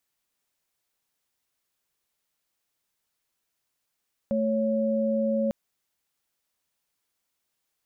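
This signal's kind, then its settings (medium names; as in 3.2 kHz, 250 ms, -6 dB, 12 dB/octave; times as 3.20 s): chord A3/C#5 sine, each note -25 dBFS 1.20 s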